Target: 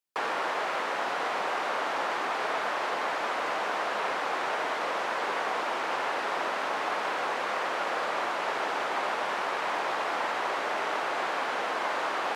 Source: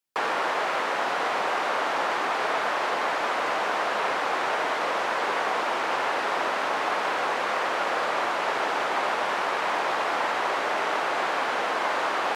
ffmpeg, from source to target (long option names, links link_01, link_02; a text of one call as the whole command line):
ffmpeg -i in.wav -af "highpass=93,volume=-4dB" out.wav